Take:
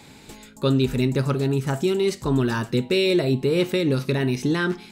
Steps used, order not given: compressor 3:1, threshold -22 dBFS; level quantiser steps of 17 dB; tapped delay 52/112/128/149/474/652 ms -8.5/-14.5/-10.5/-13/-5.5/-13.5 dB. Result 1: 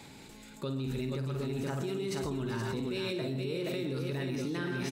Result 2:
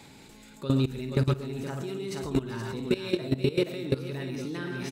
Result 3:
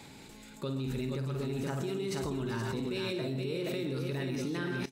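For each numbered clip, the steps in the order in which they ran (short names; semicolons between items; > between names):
tapped delay > compressor > level quantiser; tapped delay > level quantiser > compressor; compressor > tapped delay > level quantiser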